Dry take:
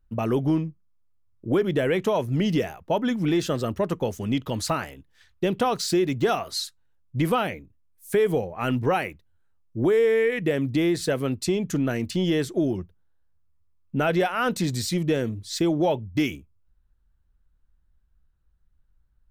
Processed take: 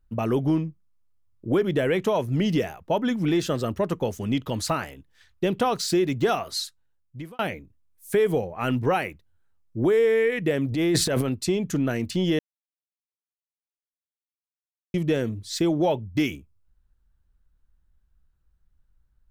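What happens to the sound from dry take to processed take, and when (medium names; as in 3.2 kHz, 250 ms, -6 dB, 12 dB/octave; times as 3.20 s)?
6.59–7.39 s: fade out
10.66–11.29 s: transient shaper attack -6 dB, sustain +11 dB
12.39–14.94 s: mute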